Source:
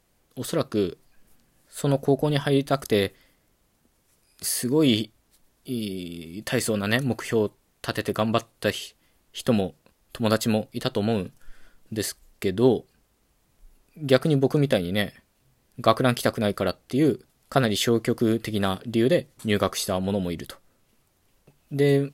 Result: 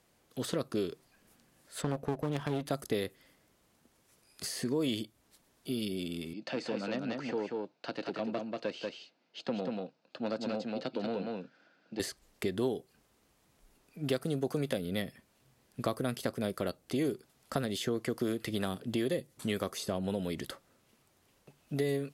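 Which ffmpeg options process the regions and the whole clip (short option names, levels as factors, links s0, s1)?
-filter_complex "[0:a]asettb=1/sr,asplit=3[s0][s1][s2];[s0]atrim=end=1.824[s3];[s1]atrim=start=1.82:end=2.66,asetpts=PTS-STARTPTS,afade=t=in:d=0.004:c=qsin,afade=t=out:st=0.836:d=0.004:c=qsin,bass=f=250:g=2,treble=f=4000:g=-12,aeval=exprs='clip(val(0),-1,0.0251)':c=same[s4];[s2]atrim=start=2.656[s5];[s3][s4]acrossfade=d=0.004:c1=hsin:c2=qsin[s6];[s6][s5]acrossfade=d=0.004:c1=qsin:c2=hsin,asettb=1/sr,asplit=3[s7][s8][s9];[s7]atrim=end=6.334[s10];[s8]atrim=start=6.33:end=12,asetpts=PTS-STARTPTS,afade=t=in:d=0.004:c=qsin,afade=t=out:st=5.666:d=0.004:c=qsin,aeval=exprs='(tanh(5.62*val(0)+0.5)-tanh(0.5))/5.62':c=same,highpass=f=190:w=0.5412,highpass=f=190:w=1.3066,equalizer=f=220:t=q:w=4:g=-5,equalizer=f=400:t=q:w=4:g=-8,equalizer=f=1100:t=q:w=4:g=-9,equalizer=f=1900:t=q:w=4:g=-10,equalizer=f=3300:t=q:w=4:g=-9,lowpass=f=4500:w=0.5412,lowpass=f=4500:w=1.3066,aecho=1:1:187:0.596,atrim=end_sample=250047[s11];[s9]atrim=start=11.996[s12];[s10][s11]acrossfade=d=0.004:c1=hsin:c2=qsin[s13];[s13][s12]acrossfade=d=0.004:c1=qsin:c2=hsin,highpass=f=130:p=1,highshelf=f=12000:g=-7,acrossover=split=490|7300[s14][s15][s16];[s14]acompressor=threshold=0.0224:ratio=4[s17];[s15]acompressor=threshold=0.0112:ratio=4[s18];[s16]acompressor=threshold=0.00355:ratio=4[s19];[s17][s18][s19]amix=inputs=3:normalize=0"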